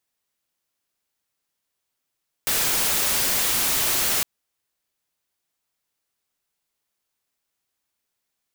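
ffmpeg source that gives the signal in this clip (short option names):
-f lavfi -i "anoisesrc=c=white:a=0.138:d=1.76:r=44100:seed=1"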